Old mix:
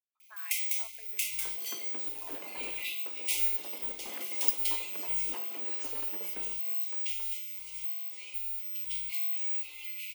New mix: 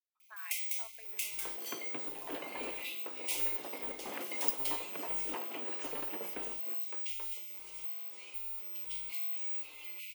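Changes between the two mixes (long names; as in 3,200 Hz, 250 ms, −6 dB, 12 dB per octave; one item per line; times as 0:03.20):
first sound −5.0 dB
second sound +4.0 dB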